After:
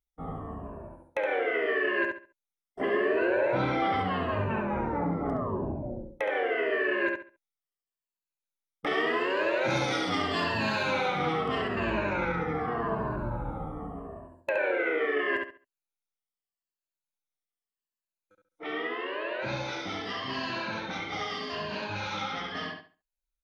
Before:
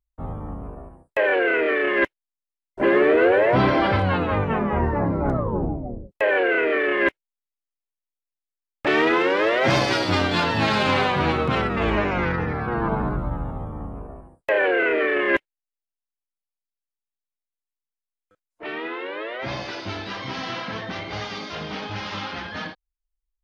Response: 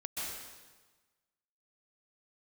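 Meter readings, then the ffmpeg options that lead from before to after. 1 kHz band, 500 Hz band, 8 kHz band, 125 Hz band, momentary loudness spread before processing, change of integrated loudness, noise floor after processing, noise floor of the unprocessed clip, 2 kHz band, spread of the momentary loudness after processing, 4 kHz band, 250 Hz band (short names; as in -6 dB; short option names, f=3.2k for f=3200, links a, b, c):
-6.0 dB, -7.5 dB, -6.0 dB, -9.5 dB, 15 LU, -7.5 dB, under -85 dBFS, under -85 dBFS, -7.0 dB, 11 LU, -6.5 dB, -8.0 dB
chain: -filter_complex "[0:a]afftfilt=real='re*pow(10,12/40*sin(2*PI*(1.4*log(max(b,1)*sr/1024/100)/log(2)-(-0.81)*(pts-256)/sr)))':imag='im*pow(10,12/40*sin(2*PI*(1.4*log(max(b,1)*sr/1024/100)/log(2)-(-0.81)*(pts-256)/sr)))':win_size=1024:overlap=0.75,lowshelf=f=100:g=-9,acompressor=threshold=-26dB:ratio=2,asplit=2[a][b];[b]adelay=69,lowpass=f=4.3k:p=1,volume=-3.5dB,asplit=2[c][d];[d]adelay=69,lowpass=f=4.3k:p=1,volume=0.27,asplit=2[e][f];[f]adelay=69,lowpass=f=4.3k:p=1,volume=0.27,asplit=2[g][h];[h]adelay=69,lowpass=f=4.3k:p=1,volume=0.27[i];[c][e][g][i]amix=inputs=4:normalize=0[j];[a][j]amix=inputs=2:normalize=0,volume=-5dB"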